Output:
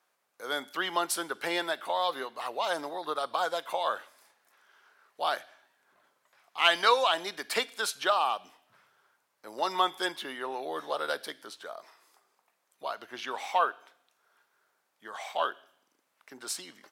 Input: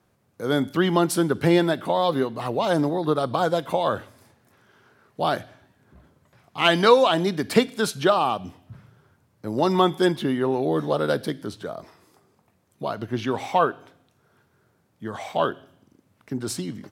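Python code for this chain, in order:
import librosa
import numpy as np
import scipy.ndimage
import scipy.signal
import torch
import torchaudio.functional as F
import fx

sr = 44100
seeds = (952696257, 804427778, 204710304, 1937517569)

y = scipy.signal.sosfilt(scipy.signal.butter(2, 830.0, 'highpass', fs=sr, output='sos'), x)
y = y * librosa.db_to_amplitude(-2.5)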